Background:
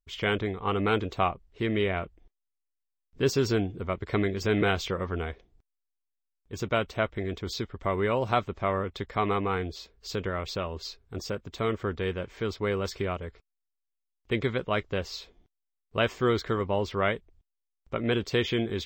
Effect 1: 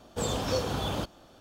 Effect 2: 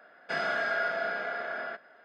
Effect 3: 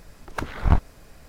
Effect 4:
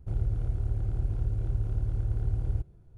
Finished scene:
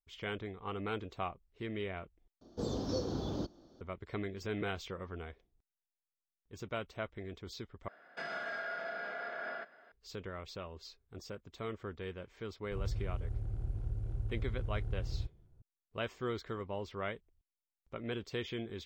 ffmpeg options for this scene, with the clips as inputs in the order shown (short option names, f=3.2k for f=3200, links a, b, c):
-filter_complex "[0:a]volume=-12.5dB[a];[1:a]firequalizer=gain_entry='entry(120,0);entry(340,7);entry(500,-1);entry(800,-6);entry(1200,-8);entry(2600,-17);entry(4200,-1);entry(6100,-2);entry(8700,-29);entry(15000,-13)':delay=0.05:min_phase=1[b];[2:a]alimiter=level_in=4dB:limit=-24dB:level=0:latency=1:release=126,volume=-4dB[c];[a]asplit=3[d][e][f];[d]atrim=end=2.414[g];[b]atrim=end=1.4,asetpts=PTS-STARTPTS,volume=-6.5dB[h];[e]atrim=start=3.806:end=7.884[i];[c]atrim=end=2.04,asetpts=PTS-STARTPTS,volume=-4dB[j];[f]atrim=start=9.916[k];[4:a]atrim=end=2.97,asetpts=PTS-STARTPTS,volume=-8.5dB,afade=t=in:d=0.004:c=hsin,afade=t=out:st=2.966:d=0.004:c=hsin,adelay=12650[l];[g][h]acrossfade=d=0.004:c1=hsin:c2=hsin[m];[m][i]acrossfade=d=0.004:c1=hsin:c2=hsin[n];[n][j]acrossfade=d=0.004:c1=hsin:c2=hsin[o];[o][k]acrossfade=d=0.004:c1=hsin:c2=hsin[p];[p][l]amix=inputs=2:normalize=0"